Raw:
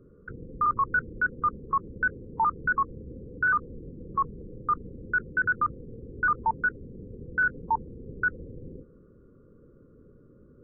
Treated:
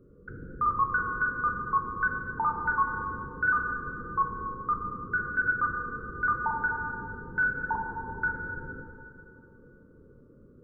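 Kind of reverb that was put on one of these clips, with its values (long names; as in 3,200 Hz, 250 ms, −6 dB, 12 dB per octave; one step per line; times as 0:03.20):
dense smooth reverb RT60 2.6 s, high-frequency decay 0.6×, DRR 2.5 dB
level −2.5 dB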